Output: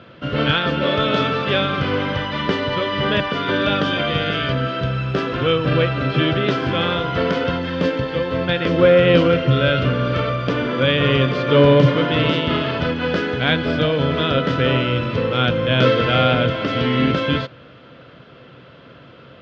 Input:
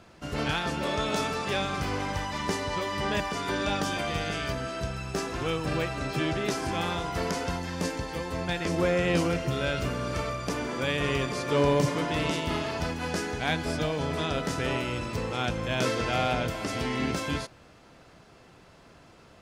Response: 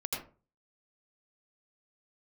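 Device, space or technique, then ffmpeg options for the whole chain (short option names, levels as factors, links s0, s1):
guitar cabinet: -af "highpass=81,equalizer=f=130:t=q:w=4:g=9,equalizer=f=260:t=q:w=4:g=5,equalizer=f=520:t=q:w=4:g=8,equalizer=f=810:t=q:w=4:g=-7,equalizer=f=1400:t=q:w=4:g=6,equalizer=f=3200:t=q:w=4:g=8,lowpass=f=3800:w=0.5412,lowpass=f=3800:w=1.3066,volume=2.37"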